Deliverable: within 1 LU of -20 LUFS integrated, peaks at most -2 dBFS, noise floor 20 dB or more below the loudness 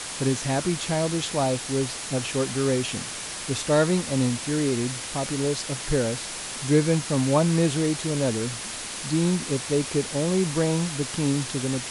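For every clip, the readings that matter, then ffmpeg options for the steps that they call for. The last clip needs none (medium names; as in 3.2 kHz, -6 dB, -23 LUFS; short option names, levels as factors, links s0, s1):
noise floor -35 dBFS; noise floor target -45 dBFS; loudness -25.0 LUFS; peak level -8.5 dBFS; loudness target -20.0 LUFS
-> -af "afftdn=nr=10:nf=-35"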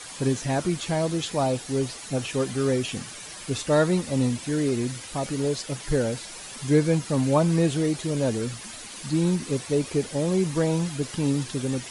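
noise floor -40 dBFS; noise floor target -46 dBFS
-> -af "afftdn=nr=6:nf=-40"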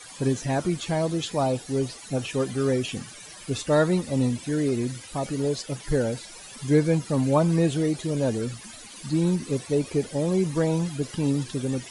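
noise floor -44 dBFS; noise floor target -46 dBFS
-> -af "afftdn=nr=6:nf=-44"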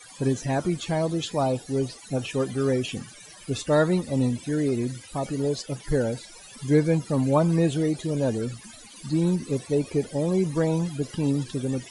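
noise floor -47 dBFS; loudness -26.0 LUFS; peak level -9.0 dBFS; loudness target -20.0 LUFS
-> -af "volume=2"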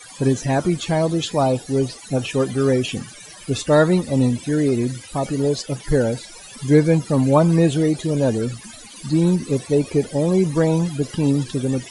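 loudness -20.0 LUFS; peak level -3.0 dBFS; noise floor -41 dBFS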